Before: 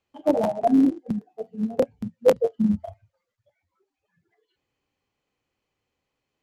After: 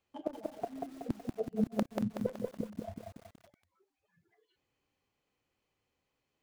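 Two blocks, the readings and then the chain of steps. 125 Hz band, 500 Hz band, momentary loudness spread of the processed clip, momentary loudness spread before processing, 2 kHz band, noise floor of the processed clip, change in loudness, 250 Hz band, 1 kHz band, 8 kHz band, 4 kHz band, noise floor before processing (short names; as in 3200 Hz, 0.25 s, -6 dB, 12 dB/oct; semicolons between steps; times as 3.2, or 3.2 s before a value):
-7.5 dB, -16.0 dB, 13 LU, 12 LU, -10.5 dB, -84 dBFS, -14.5 dB, -13.5 dB, -14.5 dB, n/a, -10.0 dB, -83 dBFS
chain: one-sided fold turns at -12.5 dBFS; flipped gate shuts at -17 dBFS, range -26 dB; lo-fi delay 0.187 s, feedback 55%, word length 9-bit, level -3 dB; gain -2.5 dB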